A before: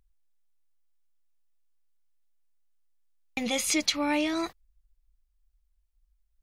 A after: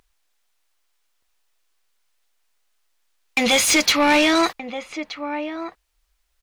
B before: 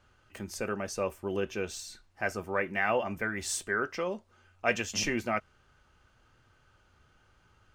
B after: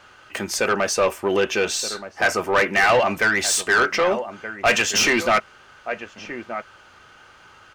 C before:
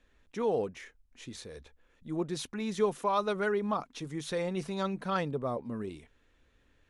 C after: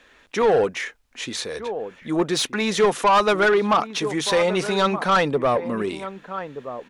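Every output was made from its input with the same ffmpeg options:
-filter_complex "[0:a]asplit=2[s0][s1];[s1]adelay=1224,volume=0.2,highshelf=f=4000:g=-27.6[s2];[s0][s2]amix=inputs=2:normalize=0,asplit=2[s3][s4];[s4]highpass=f=720:p=1,volume=14.1,asoftclip=type=tanh:threshold=0.299[s5];[s3][s5]amix=inputs=2:normalize=0,lowpass=f=5500:p=1,volume=0.501,volume=1.41"

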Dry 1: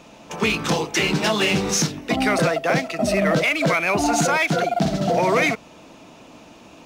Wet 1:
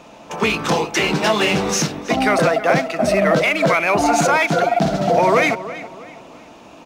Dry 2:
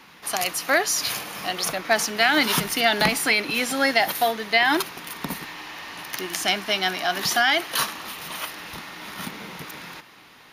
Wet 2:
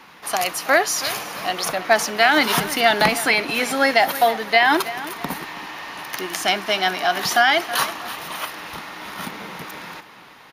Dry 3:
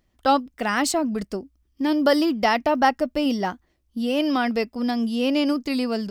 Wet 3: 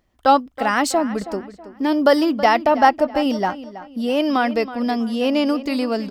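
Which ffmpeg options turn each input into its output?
-filter_complex "[0:a]equalizer=f=830:w=0.54:g=5.5,asplit=2[s0][s1];[s1]adelay=324,lowpass=f=4300:p=1,volume=0.188,asplit=2[s2][s3];[s3]adelay=324,lowpass=f=4300:p=1,volume=0.36,asplit=2[s4][s5];[s5]adelay=324,lowpass=f=4300:p=1,volume=0.36[s6];[s0][s2][s4][s6]amix=inputs=4:normalize=0"

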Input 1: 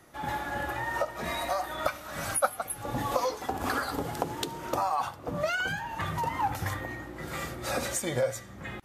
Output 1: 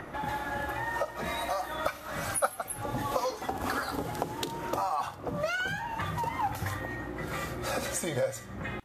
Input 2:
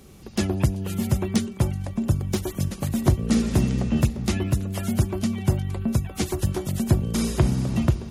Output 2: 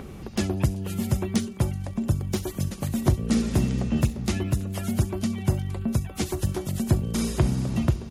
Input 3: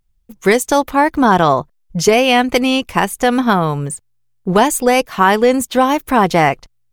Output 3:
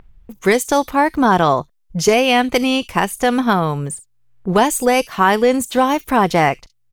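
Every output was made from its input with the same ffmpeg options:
-filter_complex "[0:a]acrossover=split=2800[s0][s1];[s0]acompressor=mode=upward:threshold=0.0447:ratio=2.5[s2];[s1]aecho=1:1:40|67:0.178|0.188[s3];[s2][s3]amix=inputs=2:normalize=0,volume=0.794"

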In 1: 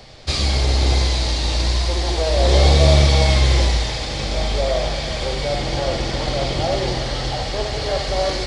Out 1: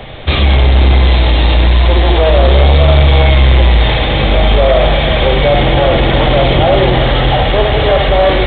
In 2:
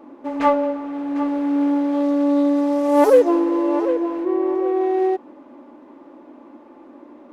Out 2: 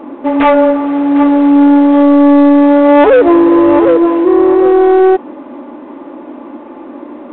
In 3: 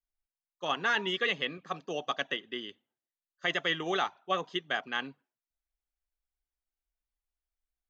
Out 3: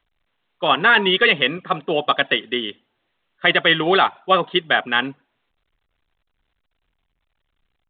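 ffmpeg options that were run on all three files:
-af "acontrast=85,alimiter=limit=0.447:level=0:latency=1:release=35,acontrast=61,volume=1.19" -ar 8000 -c:a pcm_alaw

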